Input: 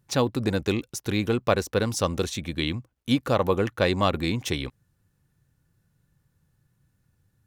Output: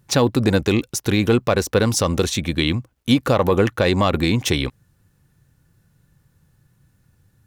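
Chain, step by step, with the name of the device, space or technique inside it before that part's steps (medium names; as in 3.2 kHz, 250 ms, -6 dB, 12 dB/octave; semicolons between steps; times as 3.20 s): soft clipper into limiter (saturation -7.5 dBFS, distortion -26 dB; peak limiter -15.5 dBFS, peak gain reduction 6 dB); trim +9 dB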